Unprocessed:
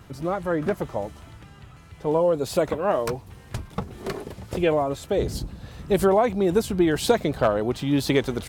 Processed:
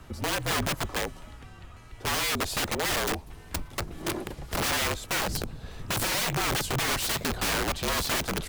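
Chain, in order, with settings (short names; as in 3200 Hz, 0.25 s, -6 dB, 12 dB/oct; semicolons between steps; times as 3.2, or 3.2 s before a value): wrapped overs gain 22.5 dB; frequency shift -48 Hz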